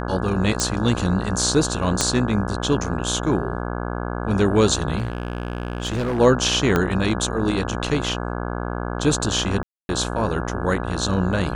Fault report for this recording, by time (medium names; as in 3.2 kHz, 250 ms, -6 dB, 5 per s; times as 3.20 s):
buzz 60 Hz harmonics 28 -27 dBFS
0.60 s: pop
2.01 s: pop -4 dBFS
4.97–6.20 s: clipped -20 dBFS
6.76 s: pop -6 dBFS
9.63–9.89 s: dropout 260 ms